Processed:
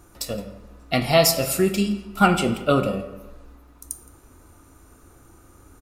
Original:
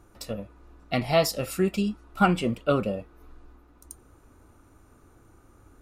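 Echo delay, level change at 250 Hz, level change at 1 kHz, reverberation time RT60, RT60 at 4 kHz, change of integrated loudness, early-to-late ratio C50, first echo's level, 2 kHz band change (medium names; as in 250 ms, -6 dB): 168 ms, +4.0 dB, +5.0 dB, 1.1 s, 0.65 s, +5.5 dB, 10.0 dB, -21.0 dB, +6.0 dB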